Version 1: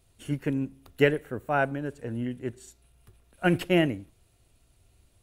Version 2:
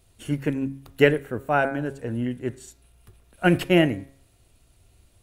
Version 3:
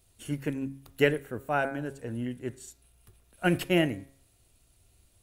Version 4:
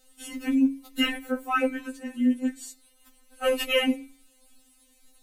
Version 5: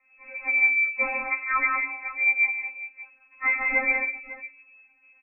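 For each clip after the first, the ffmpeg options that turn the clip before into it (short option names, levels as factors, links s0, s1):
-af "bandreject=f=136.7:t=h:w=4,bandreject=f=273.4:t=h:w=4,bandreject=f=410.1:t=h:w=4,bandreject=f=546.8:t=h:w=4,bandreject=f=683.5:t=h:w=4,bandreject=f=820.2:t=h:w=4,bandreject=f=956.9:t=h:w=4,bandreject=f=1093.6:t=h:w=4,bandreject=f=1230.3:t=h:w=4,bandreject=f=1367:t=h:w=4,bandreject=f=1503.7:t=h:w=4,bandreject=f=1640.4:t=h:w=4,bandreject=f=1777.1:t=h:w=4,bandreject=f=1913.8:t=h:w=4,bandreject=f=2050.5:t=h:w=4,bandreject=f=2187.2:t=h:w=4,bandreject=f=2323.9:t=h:w=4,bandreject=f=2460.6:t=h:w=4,volume=1.68"
-af "highshelf=f=4600:g=7,volume=0.473"
-af "afftfilt=real='re*3.46*eq(mod(b,12),0)':imag='im*3.46*eq(mod(b,12),0)':win_size=2048:overlap=0.75,volume=2.66"
-af "aecho=1:1:106|149|186|230|550:0.282|0.422|0.531|0.141|0.168,lowpass=f=2200:t=q:w=0.5098,lowpass=f=2200:t=q:w=0.6013,lowpass=f=2200:t=q:w=0.9,lowpass=f=2200:t=q:w=2.563,afreqshift=-2600"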